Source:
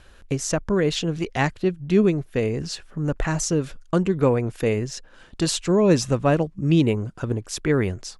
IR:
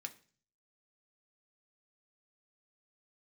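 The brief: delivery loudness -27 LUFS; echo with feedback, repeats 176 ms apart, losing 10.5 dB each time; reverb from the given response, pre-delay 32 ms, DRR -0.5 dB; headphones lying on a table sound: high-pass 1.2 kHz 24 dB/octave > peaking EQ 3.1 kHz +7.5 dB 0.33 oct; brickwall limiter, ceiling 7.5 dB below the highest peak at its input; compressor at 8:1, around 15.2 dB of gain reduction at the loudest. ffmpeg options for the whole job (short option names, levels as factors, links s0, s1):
-filter_complex "[0:a]acompressor=threshold=0.0355:ratio=8,alimiter=level_in=1.12:limit=0.0631:level=0:latency=1,volume=0.891,aecho=1:1:176|352|528:0.299|0.0896|0.0269,asplit=2[s0][s1];[1:a]atrim=start_sample=2205,adelay=32[s2];[s1][s2]afir=irnorm=-1:irlink=0,volume=1.5[s3];[s0][s3]amix=inputs=2:normalize=0,highpass=f=1200:w=0.5412,highpass=f=1200:w=1.3066,equalizer=f=3100:t=o:w=0.33:g=7.5,volume=3.35"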